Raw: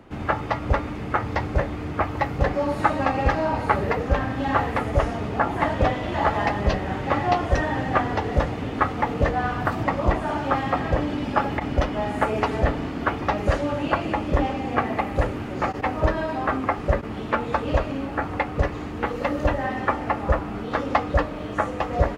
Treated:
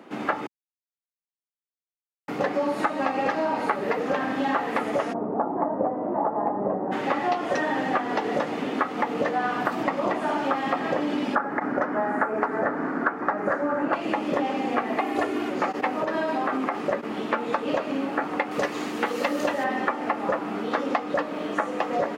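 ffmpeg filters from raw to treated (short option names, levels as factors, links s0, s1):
-filter_complex "[0:a]asplit=3[s0][s1][s2];[s0]afade=t=out:st=5.12:d=0.02[s3];[s1]lowpass=f=1000:w=0.5412,lowpass=f=1000:w=1.3066,afade=t=in:st=5.12:d=0.02,afade=t=out:st=6.91:d=0.02[s4];[s2]afade=t=in:st=6.91:d=0.02[s5];[s3][s4][s5]amix=inputs=3:normalize=0,asettb=1/sr,asplit=3[s6][s7][s8];[s6]atrim=end=11.354[s9];[s7]atrim=start=11.35:end=13.93,asetpts=PTS-STARTPTS,afade=t=in:d=0.004:c=qsin,afade=t=out:st=2.576:d=0.004:c=qsin,highshelf=f=2200:t=q:w=3:g=-12[s10];[s8]atrim=start=13.926[s11];[s9][s10]acrossfade=d=0.004:c1=hsin:c2=qsin[s12];[s12][s11]acrossfade=d=0.004:c1=qsin:c2=hsin,asettb=1/sr,asplit=3[s13][s14][s15];[s13]atrim=end=15.004[s16];[s14]atrim=start=15:end=15.5,asetpts=PTS-STARTPTS,afade=t=in:d=0.004:c=qsin,afade=t=out:st=0.496:d=0.004:c=qsin,aecho=1:1:2.8:0.97,atrim=end_sample=22050[s17];[s15]atrim=start=15.496[s18];[s16][s17]acrossfade=d=0.004:c1=hsin:c2=qsin[s19];[s19][s18]acrossfade=d=0.004:c1=qsin:c2=hsin,asettb=1/sr,asplit=3[s20][s21][s22];[s20]atrim=end=16.014[s23];[s21]atrim=start=16.01:end=16.75,asetpts=PTS-STARTPTS,afade=t=in:d=0.004:c=qsin,afade=t=out:st=0.736:d=0.004:c=qsin,acompressor=threshold=0.0794:ratio=4:attack=3.2:release=140:knee=1:detection=peak[s24];[s22]atrim=start=16.746[s25];[s23][s24]acrossfade=d=0.004:c1=hsin:c2=qsin[s26];[s26][s25]acrossfade=d=0.004:c1=qsin:c2=hsin,asettb=1/sr,asplit=3[s27][s28][s29];[s27]atrim=end=18.514[s30];[s28]atrim=start=18.51:end=19.64,asetpts=PTS-STARTPTS,afade=t=in:d=0.004:c=qsin,afade=t=out:st=1.126:d=0.004:c=qsin,highshelf=f=3400:g=11.5[s31];[s29]atrim=start=19.636[s32];[s30][s31]acrossfade=d=0.004:c1=hsin:c2=qsin[s33];[s33][s32]acrossfade=d=0.004:c1=qsin:c2=hsin,asplit=3[s34][s35][s36];[s34]atrim=end=0.47,asetpts=PTS-STARTPTS,afade=t=out:st=0.466:d=0.004:c=hsin[s37];[s35]atrim=start=0.47:end=2.28,asetpts=PTS-STARTPTS,volume=0[s38];[s36]atrim=start=2.28,asetpts=PTS-STARTPTS,afade=t=in:d=0.004:c=hsin[s39];[s37][s38][s39]concat=n=3:v=0:a=1,highpass=f=210:w=0.5412,highpass=f=210:w=1.3066,acompressor=threshold=0.0631:ratio=6,volume=1.41"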